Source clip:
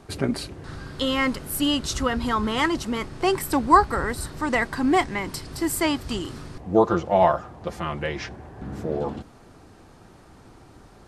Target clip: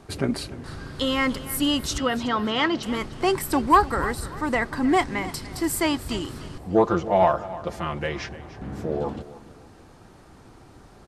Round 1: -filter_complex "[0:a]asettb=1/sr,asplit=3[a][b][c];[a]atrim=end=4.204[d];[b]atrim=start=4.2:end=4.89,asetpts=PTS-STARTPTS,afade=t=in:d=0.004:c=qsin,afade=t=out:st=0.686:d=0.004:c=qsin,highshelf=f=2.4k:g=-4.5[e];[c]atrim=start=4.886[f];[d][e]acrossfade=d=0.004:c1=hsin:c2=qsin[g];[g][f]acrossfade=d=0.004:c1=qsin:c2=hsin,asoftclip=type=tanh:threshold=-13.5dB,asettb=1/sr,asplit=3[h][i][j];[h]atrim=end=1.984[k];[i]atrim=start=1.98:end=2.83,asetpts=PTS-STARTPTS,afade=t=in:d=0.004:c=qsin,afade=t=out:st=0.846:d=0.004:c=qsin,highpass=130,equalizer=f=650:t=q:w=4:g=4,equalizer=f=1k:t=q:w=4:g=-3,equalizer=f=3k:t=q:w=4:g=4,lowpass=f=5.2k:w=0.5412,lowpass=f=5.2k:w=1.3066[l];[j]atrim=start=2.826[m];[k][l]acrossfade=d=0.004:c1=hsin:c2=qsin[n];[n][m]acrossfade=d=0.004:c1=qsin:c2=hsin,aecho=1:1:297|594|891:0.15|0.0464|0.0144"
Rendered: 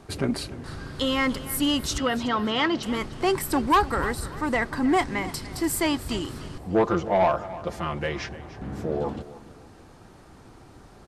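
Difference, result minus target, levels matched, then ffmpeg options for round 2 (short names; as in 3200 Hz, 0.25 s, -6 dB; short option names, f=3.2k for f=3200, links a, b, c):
soft clip: distortion +10 dB
-filter_complex "[0:a]asettb=1/sr,asplit=3[a][b][c];[a]atrim=end=4.204[d];[b]atrim=start=4.2:end=4.89,asetpts=PTS-STARTPTS,afade=t=in:d=0.004:c=qsin,afade=t=out:st=0.686:d=0.004:c=qsin,highshelf=f=2.4k:g=-4.5[e];[c]atrim=start=4.886[f];[d][e]acrossfade=d=0.004:c1=hsin:c2=qsin[g];[g][f]acrossfade=d=0.004:c1=qsin:c2=hsin,asoftclip=type=tanh:threshold=-5.5dB,asettb=1/sr,asplit=3[h][i][j];[h]atrim=end=1.984[k];[i]atrim=start=1.98:end=2.83,asetpts=PTS-STARTPTS,afade=t=in:d=0.004:c=qsin,afade=t=out:st=0.846:d=0.004:c=qsin,highpass=130,equalizer=f=650:t=q:w=4:g=4,equalizer=f=1k:t=q:w=4:g=-3,equalizer=f=3k:t=q:w=4:g=4,lowpass=f=5.2k:w=0.5412,lowpass=f=5.2k:w=1.3066[l];[j]atrim=start=2.826[m];[k][l]acrossfade=d=0.004:c1=hsin:c2=qsin[n];[n][m]acrossfade=d=0.004:c1=qsin:c2=hsin,aecho=1:1:297|594|891:0.15|0.0464|0.0144"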